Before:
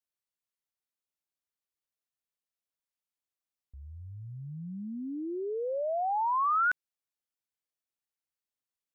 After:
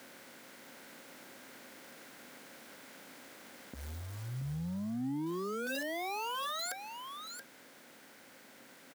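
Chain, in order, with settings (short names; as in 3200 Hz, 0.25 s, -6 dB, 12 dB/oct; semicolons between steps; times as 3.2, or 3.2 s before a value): per-bin compression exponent 0.6; resonant high shelf 1600 Hz +9 dB, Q 3; small resonant body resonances 540/1600 Hz, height 8 dB, ringing for 90 ms; in parallel at -1 dB: vocal rider within 4 dB 2 s; on the sum: short-mantissa float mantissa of 2-bit; wavefolder -29 dBFS; compressor, threshold -38 dBFS, peak gain reduction 6.5 dB; fifteen-band EQ 100 Hz -9 dB, 250 Hz +10 dB, 2500 Hz -5 dB; limiter -37.5 dBFS, peak gain reduction 11 dB; HPF 79 Hz 24 dB/oct; echo 0.678 s -7.5 dB; gain +4.5 dB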